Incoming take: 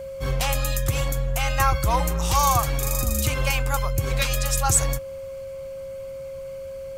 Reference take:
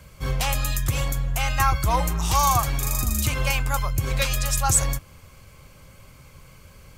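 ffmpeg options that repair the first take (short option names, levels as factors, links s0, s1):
-af "bandreject=f=540:w=30"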